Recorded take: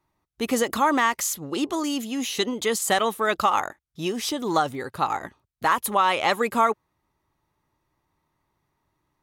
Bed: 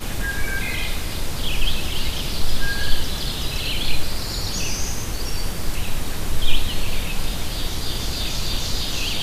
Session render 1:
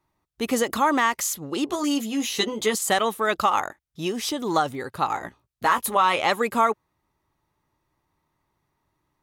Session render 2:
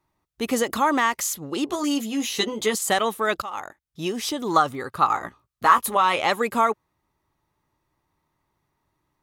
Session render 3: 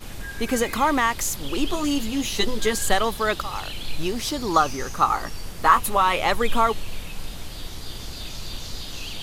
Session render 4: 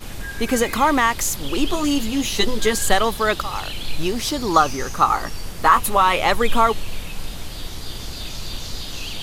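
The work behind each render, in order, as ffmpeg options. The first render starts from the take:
-filter_complex "[0:a]asettb=1/sr,asplit=3[a][b][c];[a]atrim=end=1.664[d];[b]atrim=start=1.66:end=2.75,asetpts=PTS-STARTPTS,afade=t=in:d=0.004:c=qsin,afade=t=out:st=1.086:d=0.004:c=qsin,asplit=2[e][f];[f]adelay=14,volume=-4.5dB[g];[e][g]amix=inputs=2:normalize=0,atrim=end_sample=48069[h];[c]atrim=start=2.746[i];[d][h]acrossfade=d=0.004:c1=hsin:c2=qsin[j];[j][i]acrossfade=d=0.004:c1=qsin:c2=hsin,asettb=1/sr,asplit=3[k][l][m];[k]atrim=end=5.144[n];[l]atrim=start=5.14:end=6.22,asetpts=PTS-STARTPTS,afade=t=in:d=0.004:c=qsin,afade=t=out:st=1.076:d=0.004:c=qsin,asplit=2[o][p];[p]adelay=17,volume=-7.5dB[q];[o][q]amix=inputs=2:normalize=0,atrim=end_sample=47628[r];[m]atrim=start=6.216[s];[n][r]acrossfade=d=0.004:c1=hsin:c2=qsin[t];[t][s]acrossfade=d=0.004:c1=qsin:c2=hsin"
-filter_complex "[0:a]asettb=1/sr,asplit=3[a][b][c];[a]atrim=end=4.534[d];[b]atrim=start=4.53:end=5.86,asetpts=PTS-STARTPTS,afade=t=in:d=0.004:c=qsin,afade=t=out:st=1.326:d=0.004:c=qsin,equalizer=f=1.2k:w=4.3:g=9.5[e];[c]atrim=start=5.856[f];[d][e]acrossfade=d=0.004:c1=hsin:c2=qsin[g];[g][f]acrossfade=d=0.004:c1=qsin:c2=hsin,asplit=2[h][i];[h]atrim=end=3.42,asetpts=PTS-STARTPTS,afade=t=out:st=3.416:d=0.004:c=hsin:silence=0.141254[j];[i]atrim=start=3.42,asetpts=PTS-STARTPTS,afade=t=in:d=0.61:silence=0.141254[k];[j][k]concat=n=2:v=0:a=1"
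-filter_complex "[1:a]volume=-9.5dB[a];[0:a][a]amix=inputs=2:normalize=0"
-af "volume=3.5dB,alimiter=limit=-2dB:level=0:latency=1"

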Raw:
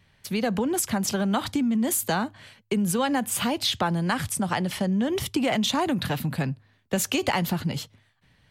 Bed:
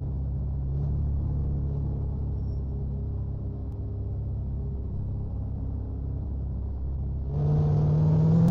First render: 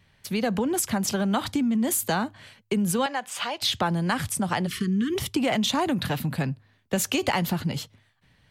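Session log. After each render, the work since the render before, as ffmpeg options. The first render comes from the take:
-filter_complex "[0:a]asettb=1/sr,asplit=3[a][b][c];[a]atrim=end=3.064[d];[b]atrim=start=3.06:end=3.62,asetpts=PTS-STARTPTS,afade=t=in:d=0.004:c=qsin,afade=t=out:st=0.556:d=0.004:c=qsin,acrossover=split=500 6900:gain=0.0794 1 0.141[e][f][g];[e][f][g]amix=inputs=3:normalize=0[h];[c]atrim=start=3.616[i];[d][h]acrossfade=d=0.004:c1=hsin:c2=qsin[j];[j][i]acrossfade=d=0.004:c1=qsin:c2=hsin,asplit=3[k][l][m];[k]afade=t=out:st=4.66:d=0.02[n];[l]asuperstop=centerf=700:order=20:qfactor=1.1,afade=t=in:st=4.66:d=0.02,afade=t=out:st=5.14:d=0.02[o];[m]afade=t=in:st=5.14:d=0.02[p];[n][o][p]amix=inputs=3:normalize=0"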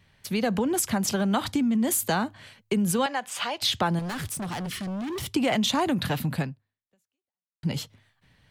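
-filter_complex "[0:a]asettb=1/sr,asplit=3[a][b][c];[a]atrim=end=3.994[d];[b]atrim=start=3.99:end=5.32,asetpts=PTS-STARTPTS,afade=t=in:d=0.004:c=qsin,afade=t=out:st=1.326:d=0.004:c=qsin,volume=30dB,asoftclip=hard,volume=-30dB[e];[c]atrim=start=5.316[f];[d][e]acrossfade=d=0.004:c1=hsin:c2=qsin[g];[g][f]acrossfade=d=0.004:c1=qsin:c2=hsin,asplit=2[h][i];[h]atrim=end=7.63,asetpts=PTS-STARTPTS,afade=t=out:st=6.4:d=1.23:c=exp[j];[i]atrim=start=7.63,asetpts=PTS-STARTPTS,afade=t=in:d=0.004:c=hsin[k];[j][k]concat=n=2:v=0:a=1"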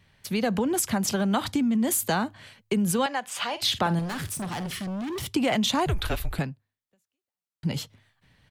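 -filter_complex "[0:a]asplit=3[a][b][c];[a]afade=t=out:st=3.47:d=0.02[d];[b]asplit=2[e][f];[f]adelay=48,volume=-13dB[g];[e][g]amix=inputs=2:normalize=0,afade=t=in:st=3.47:d=0.02,afade=t=out:st=4.84:d=0.02[h];[c]afade=t=in:st=4.84:d=0.02[i];[d][h][i]amix=inputs=3:normalize=0,asettb=1/sr,asplit=3[j][k][l];[j]atrim=end=5.864[m];[k]atrim=start=5.86:end=6.39,asetpts=PTS-STARTPTS,afade=t=in:d=0.004:c=qsin,afade=t=out:st=0.526:d=0.004:c=qsin,afreqshift=-180[n];[l]atrim=start=6.386[o];[m][n]acrossfade=d=0.004:c1=hsin:c2=qsin[p];[p][o]acrossfade=d=0.004:c1=qsin:c2=hsin"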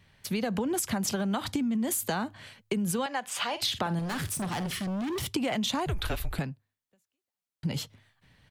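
-af "acompressor=threshold=-26dB:ratio=6"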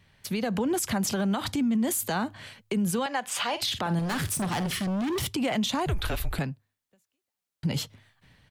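-af "dynaudnorm=f=320:g=3:m=3.5dB,alimiter=limit=-19dB:level=0:latency=1:release=26"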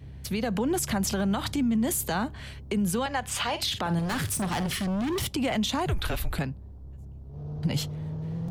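-filter_complex "[1:a]volume=-12.5dB[a];[0:a][a]amix=inputs=2:normalize=0"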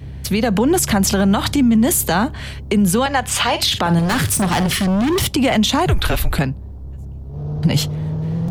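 -af "volume=11.5dB"

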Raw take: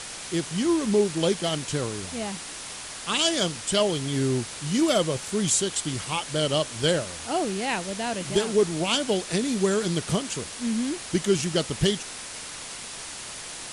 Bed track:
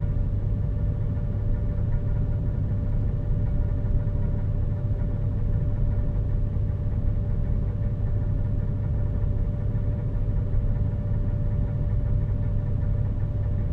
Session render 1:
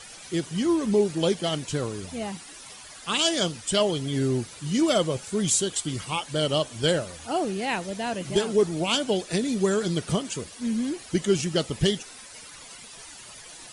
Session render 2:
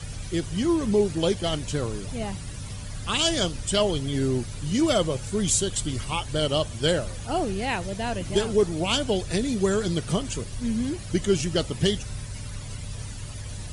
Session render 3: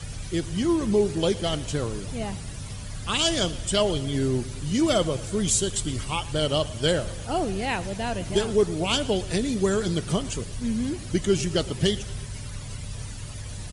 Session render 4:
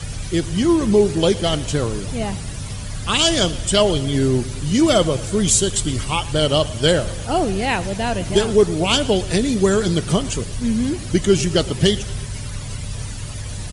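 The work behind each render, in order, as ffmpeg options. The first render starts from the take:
-af "afftdn=nr=12:nf=-38"
-filter_complex "[1:a]volume=-11dB[a];[0:a][a]amix=inputs=2:normalize=0"
-af "aecho=1:1:114|228|342|456|570:0.112|0.0673|0.0404|0.0242|0.0145"
-af "volume=7dB,alimiter=limit=-3dB:level=0:latency=1"

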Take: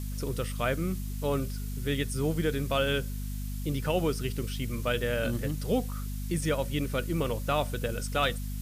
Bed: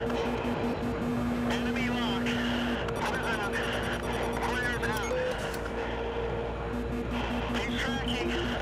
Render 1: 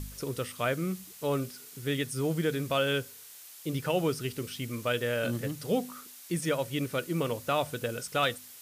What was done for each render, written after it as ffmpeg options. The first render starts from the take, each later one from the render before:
-af "bandreject=f=50:t=h:w=4,bandreject=f=100:t=h:w=4,bandreject=f=150:t=h:w=4,bandreject=f=200:t=h:w=4,bandreject=f=250:t=h:w=4"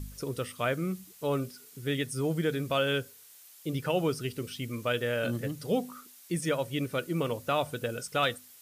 -af "afftdn=nr=6:nf=-49"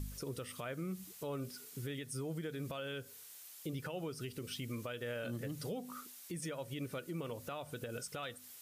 -af "acompressor=threshold=-33dB:ratio=5,alimiter=level_in=8.5dB:limit=-24dB:level=0:latency=1:release=171,volume=-8.5dB"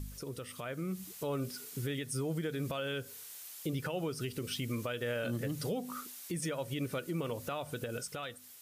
-af "dynaudnorm=f=190:g=9:m=5.5dB"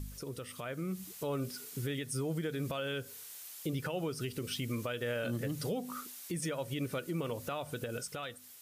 -af anull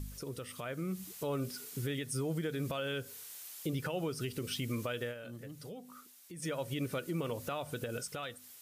-filter_complex "[0:a]asplit=3[a][b][c];[a]atrim=end=5.15,asetpts=PTS-STARTPTS,afade=t=out:st=5.01:d=0.14:silence=0.281838[d];[b]atrim=start=5.15:end=6.36,asetpts=PTS-STARTPTS,volume=-11dB[e];[c]atrim=start=6.36,asetpts=PTS-STARTPTS,afade=t=in:d=0.14:silence=0.281838[f];[d][e][f]concat=n=3:v=0:a=1"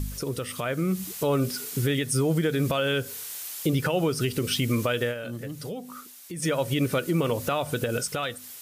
-af "volume=11.5dB"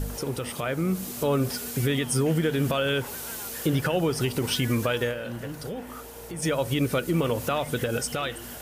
-filter_complex "[1:a]volume=-11.5dB[a];[0:a][a]amix=inputs=2:normalize=0"

